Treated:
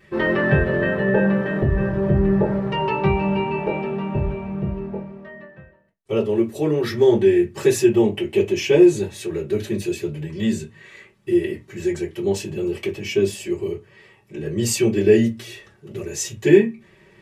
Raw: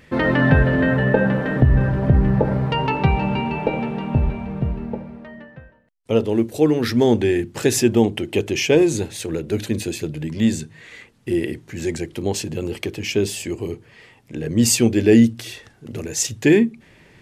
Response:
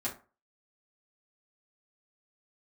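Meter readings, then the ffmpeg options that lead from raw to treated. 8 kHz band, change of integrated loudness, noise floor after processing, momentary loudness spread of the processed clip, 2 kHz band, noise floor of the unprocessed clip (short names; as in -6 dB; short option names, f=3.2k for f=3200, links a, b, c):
-5.5 dB, -1.0 dB, -53 dBFS, 14 LU, -1.5 dB, -51 dBFS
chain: -filter_complex "[1:a]atrim=start_sample=2205,asetrate=70560,aresample=44100[a];[0:a][a]afir=irnorm=-1:irlink=0,volume=-2dB"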